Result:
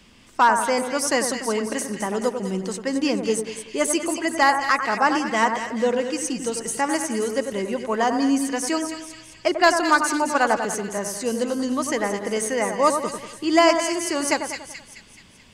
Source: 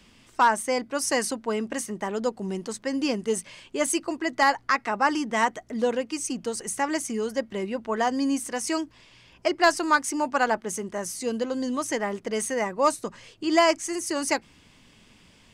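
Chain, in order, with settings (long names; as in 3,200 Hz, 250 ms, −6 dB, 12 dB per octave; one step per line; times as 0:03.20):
echo with a time of its own for lows and highs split 1,800 Hz, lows 95 ms, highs 215 ms, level −7 dB
level +3 dB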